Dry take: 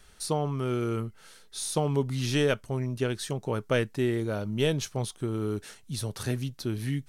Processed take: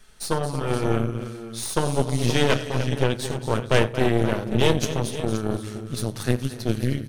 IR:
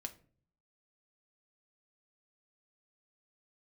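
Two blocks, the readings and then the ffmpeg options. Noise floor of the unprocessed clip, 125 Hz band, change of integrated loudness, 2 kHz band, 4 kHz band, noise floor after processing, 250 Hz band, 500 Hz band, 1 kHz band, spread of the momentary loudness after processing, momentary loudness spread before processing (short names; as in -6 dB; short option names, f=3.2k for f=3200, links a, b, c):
-55 dBFS, +5.5 dB, +5.5 dB, +7.0 dB, +6.5 dB, -37 dBFS, +5.5 dB, +5.5 dB, +8.0 dB, 8 LU, 8 LU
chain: -filter_complex "[0:a]aecho=1:1:93|226|302|467|524:0.168|0.299|0.211|0.112|0.299[a];[1:a]atrim=start_sample=2205[b];[a][b]afir=irnorm=-1:irlink=0,aeval=exprs='0.2*(cos(1*acos(clip(val(0)/0.2,-1,1)))-cos(1*PI/2))+0.1*(cos(4*acos(clip(val(0)/0.2,-1,1)))-cos(4*PI/2))+0.0224*(cos(5*acos(clip(val(0)/0.2,-1,1)))-cos(5*PI/2))+0.0126*(cos(7*acos(clip(val(0)/0.2,-1,1)))-cos(7*PI/2))':c=same,volume=3.5dB"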